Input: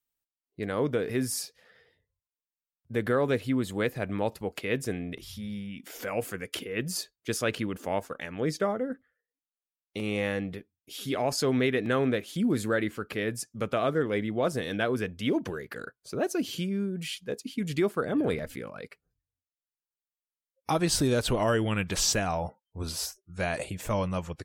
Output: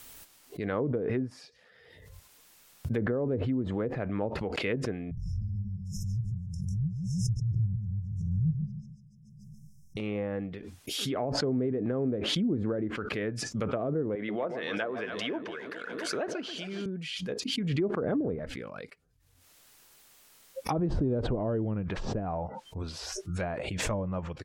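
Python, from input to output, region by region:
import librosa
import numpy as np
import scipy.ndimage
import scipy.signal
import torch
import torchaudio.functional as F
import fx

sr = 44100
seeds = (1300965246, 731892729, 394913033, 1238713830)

y = fx.chain(x, sr, fx.brickwall_bandstop(low_hz=180.0, high_hz=5100.0),
    fx.riaa(side='playback'),
    fx.echo_warbled(ms=145, feedback_pct=36, rate_hz=2.8, cents=82, wet_db=-6.0), at=(5.11, 9.97))
y = fx.chain(y, sr, fx.weighting(curve='A'),
    fx.echo_alternate(ms=135, hz=940.0, feedback_pct=75, wet_db=-10), at=(14.15, 16.86))
y = fx.env_lowpass_down(y, sr, base_hz=530.0, full_db=-23.0)
y = fx.pre_swell(y, sr, db_per_s=27.0)
y = F.gain(torch.from_numpy(y), -2.5).numpy()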